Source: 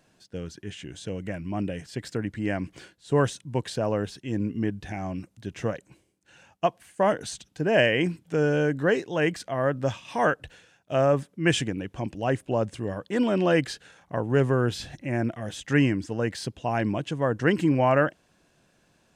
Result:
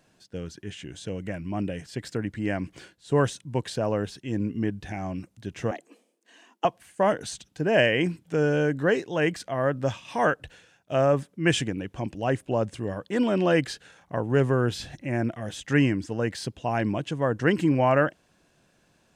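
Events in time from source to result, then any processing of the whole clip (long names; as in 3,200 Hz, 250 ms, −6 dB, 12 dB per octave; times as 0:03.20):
0:05.71–0:06.65: frequency shifter +150 Hz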